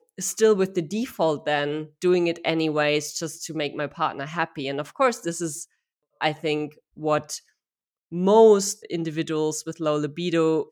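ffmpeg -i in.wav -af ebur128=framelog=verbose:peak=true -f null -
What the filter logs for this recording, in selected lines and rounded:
Integrated loudness:
  I:         -23.9 LUFS
  Threshold: -34.2 LUFS
Loudness range:
  LRA:         5.2 LU
  Threshold: -44.8 LUFS
  LRA low:   -27.9 LUFS
  LRA high:  -22.7 LUFS
True peak:
  Peak:       -4.6 dBFS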